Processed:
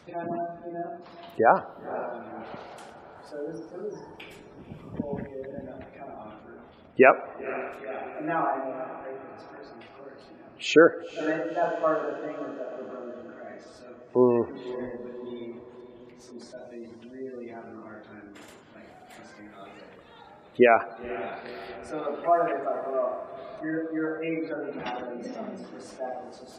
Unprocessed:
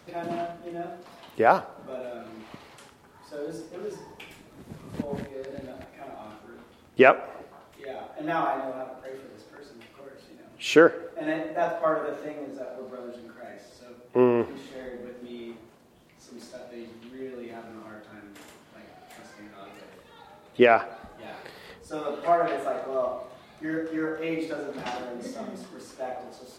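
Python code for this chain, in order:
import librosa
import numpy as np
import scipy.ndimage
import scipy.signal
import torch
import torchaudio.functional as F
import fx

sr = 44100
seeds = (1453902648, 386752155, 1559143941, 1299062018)

y = fx.spec_gate(x, sr, threshold_db=-25, keep='strong')
y = fx.echo_diffused(y, sr, ms=507, feedback_pct=55, wet_db=-15)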